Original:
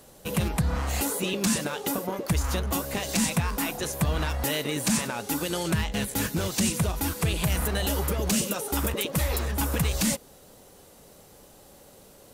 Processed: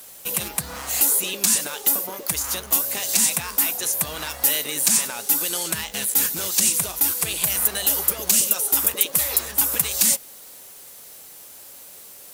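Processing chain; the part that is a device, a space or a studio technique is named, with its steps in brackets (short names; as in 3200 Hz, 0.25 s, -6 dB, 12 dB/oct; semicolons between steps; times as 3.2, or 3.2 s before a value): turntable without a phono preamp (RIAA curve recording; white noise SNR 26 dB); gain -1 dB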